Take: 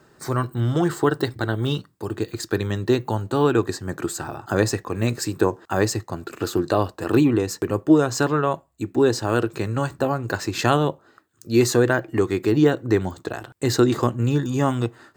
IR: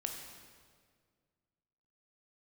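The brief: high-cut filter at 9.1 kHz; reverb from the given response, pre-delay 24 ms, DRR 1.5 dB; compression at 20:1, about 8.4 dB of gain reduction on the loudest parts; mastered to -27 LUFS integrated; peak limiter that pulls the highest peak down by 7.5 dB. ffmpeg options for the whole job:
-filter_complex "[0:a]lowpass=9100,acompressor=threshold=0.112:ratio=20,alimiter=limit=0.168:level=0:latency=1,asplit=2[s0][s1];[1:a]atrim=start_sample=2205,adelay=24[s2];[s1][s2]afir=irnorm=-1:irlink=0,volume=0.841[s3];[s0][s3]amix=inputs=2:normalize=0,volume=0.841"

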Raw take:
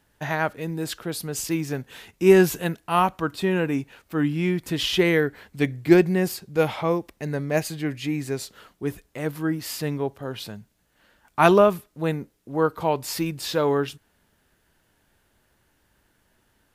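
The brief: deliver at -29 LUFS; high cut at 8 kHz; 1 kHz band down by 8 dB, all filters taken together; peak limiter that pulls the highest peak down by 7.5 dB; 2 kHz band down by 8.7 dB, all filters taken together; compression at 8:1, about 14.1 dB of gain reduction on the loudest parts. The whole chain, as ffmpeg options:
-af "lowpass=8000,equalizer=f=1000:t=o:g=-8.5,equalizer=f=2000:t=o:g=-8.5,acompressor=threshold=0.0562:ratio=8,volume=1.68,alimiter=limit=0.119:level=0:latency=1"

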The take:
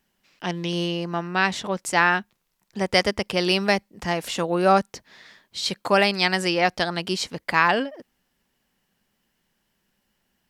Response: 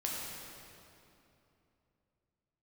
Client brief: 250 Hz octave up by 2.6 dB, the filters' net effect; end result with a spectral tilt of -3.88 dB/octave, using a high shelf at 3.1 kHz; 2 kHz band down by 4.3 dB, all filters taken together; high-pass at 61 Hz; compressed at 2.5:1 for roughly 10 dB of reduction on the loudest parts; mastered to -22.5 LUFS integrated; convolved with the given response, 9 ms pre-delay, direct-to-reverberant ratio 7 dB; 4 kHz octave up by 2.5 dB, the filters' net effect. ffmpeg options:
-filter_complex "[0:a]highpass=61,equalizer=f=250:t=o:g=4.5,equalizer=f=2000:t=o:g=-7.5,highshelf=f=3100:g=3.5,equalizer=f=4000:t=o:g=3,acompressor=threshold=0.0398:ratio=2.5,asplit=2[s0][s1];[1:a]atrim=start_sample=2205,adelay=9[s2];[s1][s2]afir=irnorm=-1:irlink=0,volume=0.299[s3];[s0][s3]amix=inputs=2:normalize=0,volume=2.24"

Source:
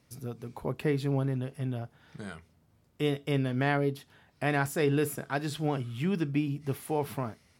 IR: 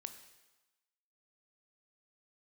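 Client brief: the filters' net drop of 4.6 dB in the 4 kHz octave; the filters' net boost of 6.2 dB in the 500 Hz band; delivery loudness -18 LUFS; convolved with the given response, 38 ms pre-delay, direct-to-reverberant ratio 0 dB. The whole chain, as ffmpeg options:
-filter_complex "[0:a]equalizer=f=500:t=o:g=7.5,equalizer=f=4000:t=o:g=-6.5,asplit=2[s0][s1];[1:a]atrim=start_sample=2205,adelay=38[s2];[s1][s2]afir=irnorm=-1:irlink=0,volume=1.58[s3];[s0][s3]amix=inputs=2:normalize=0,volume=2.24"

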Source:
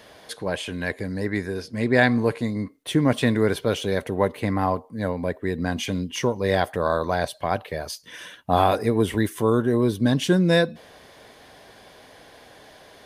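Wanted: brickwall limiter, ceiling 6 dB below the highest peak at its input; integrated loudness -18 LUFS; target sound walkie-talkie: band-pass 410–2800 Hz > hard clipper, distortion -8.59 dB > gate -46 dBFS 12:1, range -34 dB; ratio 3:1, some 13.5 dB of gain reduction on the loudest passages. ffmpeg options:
-af "acompressor=threshold=0.0224:ratio=3,alimiter=limit=0.0708:level=0:latency=1,highpass=410,lowpass=2800,asoftclip=type=hard:threshold=0.0141,agate=range=0.02:threshold=0.00501:ratio=12,volume=16.8"

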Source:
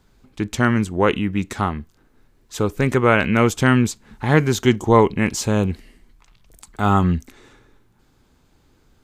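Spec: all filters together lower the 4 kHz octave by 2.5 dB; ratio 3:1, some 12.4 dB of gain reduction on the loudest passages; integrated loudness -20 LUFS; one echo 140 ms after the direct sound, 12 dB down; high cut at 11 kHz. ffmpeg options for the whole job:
-af "lowpass=11000,equalizer=f=4000:t=o:g=-3.5,acompressor=threshold=0.0501:ratio=3,aecho=1:1:140:0.251,volume=2.82"

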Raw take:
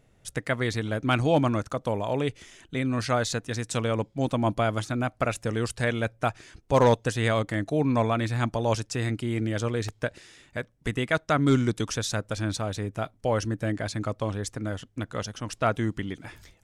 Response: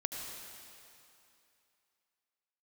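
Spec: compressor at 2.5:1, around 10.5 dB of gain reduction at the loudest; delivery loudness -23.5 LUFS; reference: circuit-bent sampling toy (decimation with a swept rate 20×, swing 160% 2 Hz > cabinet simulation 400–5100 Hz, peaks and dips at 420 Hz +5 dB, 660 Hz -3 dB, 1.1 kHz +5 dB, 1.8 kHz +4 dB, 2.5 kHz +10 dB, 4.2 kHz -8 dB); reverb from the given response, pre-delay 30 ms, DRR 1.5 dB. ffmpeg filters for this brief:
-filter_complex "[0:a]acompressor=threshold=0.0251:ratio=2.5,asplit=2[s0][s1];[1:a]atrim=start_sample=2205,adelay=30[s2];[s1][s2]afir=irnorm=-1:irlink=0,volume=0.668[s3];[s0][s3]amix=inputs=2:normalize=0,acrusher=samples=20:mix=1:aa=0.000001:lfo=1:lforange=32:lforate=2,highpass=400,equalizer=f=420:t=q:w=4:g=5,equalizer=f=660:t=q:w=4:g=-3,equalizer=f=1100:t=q:w=4:g=5,equalizer=f=1800:t=q:w=4:g=4,equalizer=f=2500:t=q:w=4:g=10,equalizer=f=4200:t=q:w=4:g=-8,lowpass=f=5100:w=0.5412,lowpass=f=5100:w=1.3066,volume=3.35"

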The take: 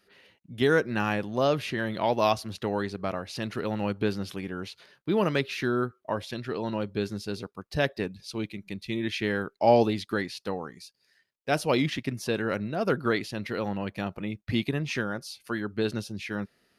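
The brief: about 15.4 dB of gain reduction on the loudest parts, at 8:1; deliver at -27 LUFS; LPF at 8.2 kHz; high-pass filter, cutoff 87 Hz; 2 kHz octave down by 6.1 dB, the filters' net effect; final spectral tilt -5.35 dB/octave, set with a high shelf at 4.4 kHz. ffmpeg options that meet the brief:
-af "highpass=87,lowpass=8200,equalizer=f=2000:t=o:g=-7.5,highshelf=f=4400:g=-5,acompressor=threshold=0.0282:ratio=8,volume=3.35"

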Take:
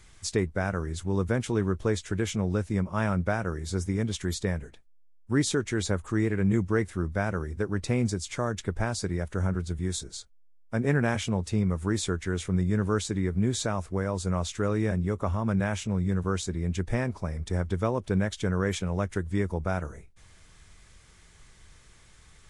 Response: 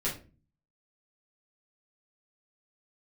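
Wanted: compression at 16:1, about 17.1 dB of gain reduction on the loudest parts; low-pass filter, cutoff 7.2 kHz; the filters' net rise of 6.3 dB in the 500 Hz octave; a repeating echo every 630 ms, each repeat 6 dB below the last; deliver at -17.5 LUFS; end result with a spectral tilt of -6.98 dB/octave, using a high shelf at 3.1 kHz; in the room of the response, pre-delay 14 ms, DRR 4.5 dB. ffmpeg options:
-filter_complex "[0:a]lowpass=7200,equalizer=f=500:t=o:g=8,highshelf=f=3100:g=-5,acompressor=threshold=0.02:ratio=16,aecho=1:1:630|1260|1890|2520|3150|3780:0.501|0.251|0.125|0.0626|0.0313|0.0157,asplit=2[s0][s1];[1:a]atrim=start_sample=2205,adelay=14[s2];[s1][s2]afir=irnorm=-1:irlink=0,volume=0.299[s3];[s0][s3]amix=inputs=2:normalize=0,volume=9.44"

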